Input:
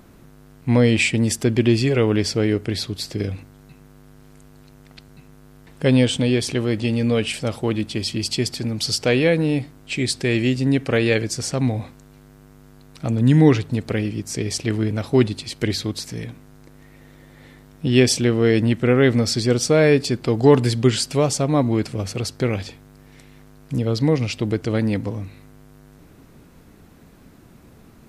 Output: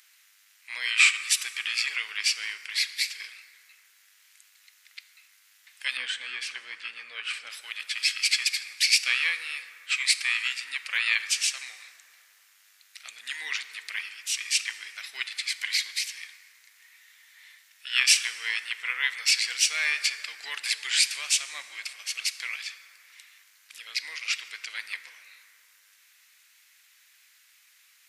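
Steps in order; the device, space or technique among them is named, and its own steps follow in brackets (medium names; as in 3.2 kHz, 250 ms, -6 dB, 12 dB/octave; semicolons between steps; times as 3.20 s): octave pedal (harmony voices -12 st -3 dB); Chebyshev high-pass 2 kHz, order 3; 5.97–7.50 s: tilt EQ -4.5 dB/octave; plate-style reverb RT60 3.1 s, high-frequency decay 0.4×, DRR 10.5 dB; trim +1.5 dB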